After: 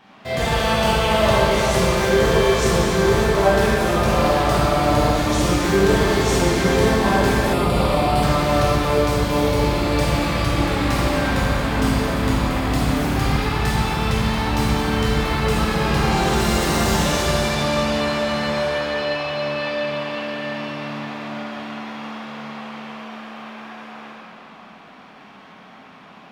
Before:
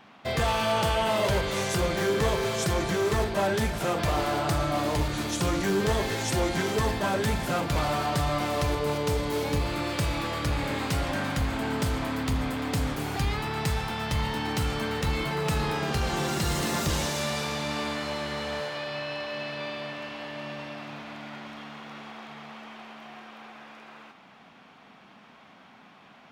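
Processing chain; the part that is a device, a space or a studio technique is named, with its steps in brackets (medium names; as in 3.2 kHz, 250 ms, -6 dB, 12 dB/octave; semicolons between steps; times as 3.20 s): tunnel (flutter echo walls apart 8.4 m, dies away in 0.28 s; reverberation RT60 3.7 s, pre-delay 12 ms, DRR -8 dB); 7.53–8.23 s: graphic EQ with 31 bands 1.6 kHz -10 dB, 6.3 kHz -11 dB, 10 kHz +3 dB, 16 kHz -6 dB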